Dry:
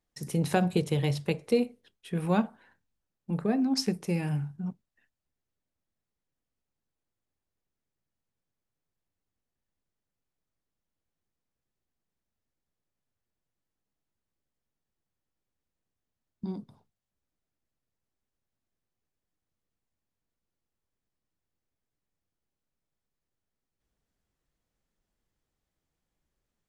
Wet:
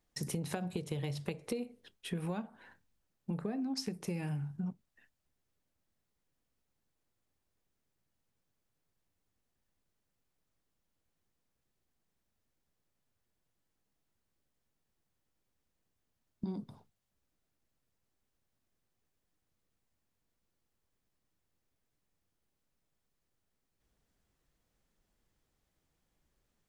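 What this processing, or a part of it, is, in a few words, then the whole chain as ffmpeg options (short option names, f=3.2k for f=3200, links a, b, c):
serial compression, leveller first: -af "acompressor=threshold=-29dB:ratio=2,acompressor=threshold=-39dB:ratio=5,volume=4dB"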